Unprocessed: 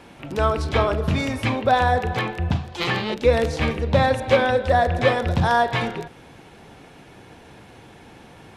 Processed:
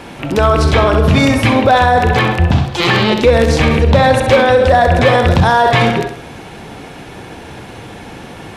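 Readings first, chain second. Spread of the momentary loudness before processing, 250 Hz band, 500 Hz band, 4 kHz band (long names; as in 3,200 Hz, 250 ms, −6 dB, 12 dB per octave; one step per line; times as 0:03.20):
7 LU, +12.0 dB, +9.5 dB, +11.0 dB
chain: hard clipping −9.5 dBFS, distortion −24 dB
flutter between parallel walls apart 11.2 metres, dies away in 0.44 s
boost into a limiter +14.5 dB
level −1 dB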